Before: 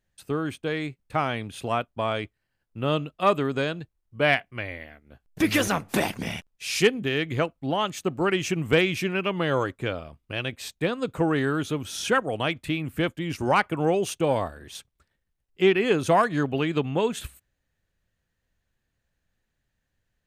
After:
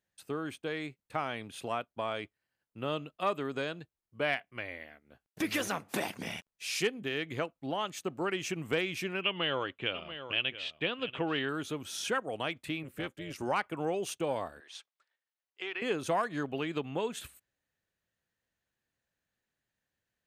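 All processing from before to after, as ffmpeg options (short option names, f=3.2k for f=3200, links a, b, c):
-filter_complex "[0:a]asettb=1/sr,asplit=3[a][b][c];[a]atrim=end=9.214[d];[b]atrim=start=9.21:end=11.49,asetpts=PTS-STARTPTS,afade=t=in:d=0.004:c=qsin,afade=t=out:st=2.276:d=0.004:c=qsin,lowpass=f=3k:t=q:w=5.3,aecho=1:1:686:0.178,atrim=end_sample=100548[e];[c]atrim=start=11.486[f];[d][e]acrossfade=d=0.004:c1=hsin:c2=qsin[g];[g][f]acrossfade=d=0.004:c1=qsin:c2=hsin,asettb=1/sr,asplit=3[h][i][j];[h]atrim=end=12.834[k];[i]atrim=start=12.83:end=13.36,asetpts=PTS-STARTPTS,afade=t=in:d=0.004:c=qsin,afade=t=out:st=0.526:d=0.004:c=qsin,equalizer=f=640:t=o:w=0.38:g=-13,tremolo=f=270:d=0.75[l];[j]atrim=start=13.356[m];[k][l]acrossfade=d=0.004:c1=hsin:c2=qsin[n];[n][m]acrossfade=d=0.004:c1=qsin:c2=hsin,asettb=1/sr,asplit=3[o][p][q];[o]atrim=end=14.604[r];[p]atrim=start=14.6:end=15.82,asetpts=PTS-STARTPTS,afade=t=in:d=0.004:c=qsin,afade=t=out:st=1.216:d=0.004:c=qsin,acompressor=threshold=-22dB:ratio=3:attack=3.2:release=140:knee=1:detection=peak,highpass=700,lowpass=5.9k[s];[q]atrim=start=15.816[t];[r][s]acrossfade=d=0.004:c1=hsin:c2=qsin[u];[u][t]acrossfade=d=0.004:c1=qsin:c2=hsin,highpass=f=250:p=1,acompressor=threshold=-29dB:ratio=1.5,volume=-5dB"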